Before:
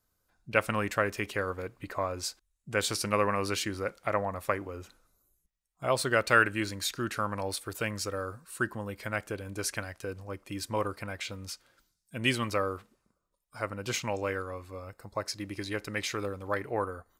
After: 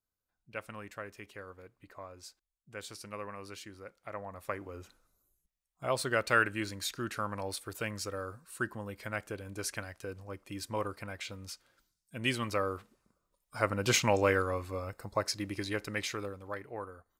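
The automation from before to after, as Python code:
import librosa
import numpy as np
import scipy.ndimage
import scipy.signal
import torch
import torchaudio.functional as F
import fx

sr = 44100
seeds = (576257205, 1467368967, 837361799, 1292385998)

y = fx.gain(x, sr, db=fx.line((3.97, -15.0), (4.76, -4.0), (12.32, -4.0), (13.84, 5.5), (14.58, 5.5), (16.01, -2.0), (16.66, -10.0)))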